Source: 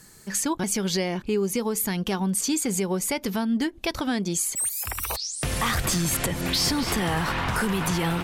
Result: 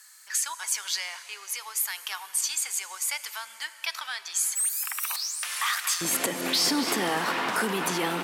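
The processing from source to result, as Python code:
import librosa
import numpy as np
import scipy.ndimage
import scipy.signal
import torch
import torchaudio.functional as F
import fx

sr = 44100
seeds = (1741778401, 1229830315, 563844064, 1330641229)

y = fx.highpass(x, sr, hz=fx.steps((0.0, 1100.0), (6.01, 240.0)), slope=24)
y = fx.rev_plate(y, sr, seeds[0], rt60_s=4.4, hf_ratio=0.75, predelay_ms=0, drr_db=12.0)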